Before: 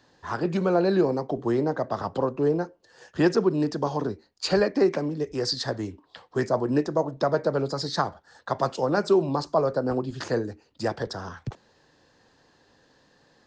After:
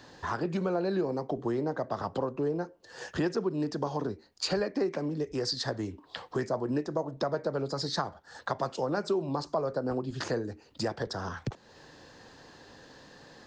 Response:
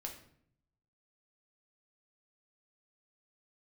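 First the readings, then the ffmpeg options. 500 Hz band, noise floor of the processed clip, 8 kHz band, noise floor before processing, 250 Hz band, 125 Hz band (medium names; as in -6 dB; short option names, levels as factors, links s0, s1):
-7.0 dB, -59 dBFS, no reading, -63 dBFS, -6.5 dB, -5.5 dB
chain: -af "acompressor=threshold=0.00631:ratio=2.5,volume=2.66"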